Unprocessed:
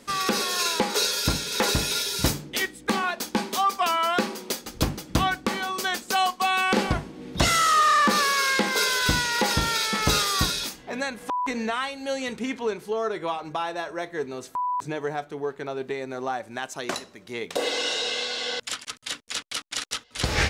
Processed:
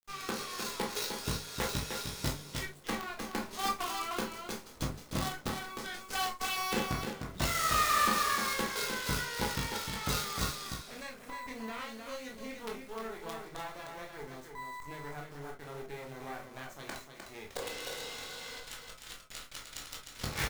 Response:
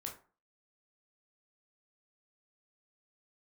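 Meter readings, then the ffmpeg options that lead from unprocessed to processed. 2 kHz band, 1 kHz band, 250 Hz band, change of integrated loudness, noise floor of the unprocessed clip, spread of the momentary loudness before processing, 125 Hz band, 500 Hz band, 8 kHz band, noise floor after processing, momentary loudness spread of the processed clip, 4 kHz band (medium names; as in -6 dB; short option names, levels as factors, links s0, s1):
-11.0 dB, -11.0 dB, -10.5 dB, -10.5 dB, -50 dBFS, 11 LU, -8.5 dB, -12.0 dB, -10.0 dB, -52 dBFS, 14 LU, -12.0 dB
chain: -filter_complex "[0:a]lowpass=11000,bandreject=f=294.3:t=h:w=4,bandreject=f=588.6:t=h:w=4,acrusher=bits=4:dc=4:mix=0:aa=0.000001,aecho=1:1:305:0.501[s0];[1:a]atrim=start_sample=2205,atrim=end_sample=3528[s1];[s0][s1]afir=irnorm=-1:irlink=0,volume=0.398"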